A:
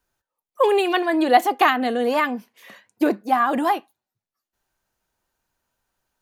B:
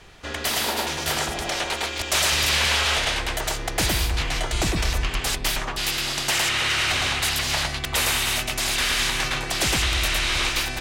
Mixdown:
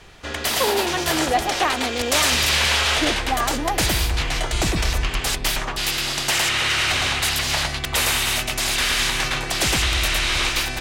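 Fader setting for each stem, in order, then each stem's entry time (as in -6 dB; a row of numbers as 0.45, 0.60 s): -5.5, +2.0 dB; 0.00, 0.00 s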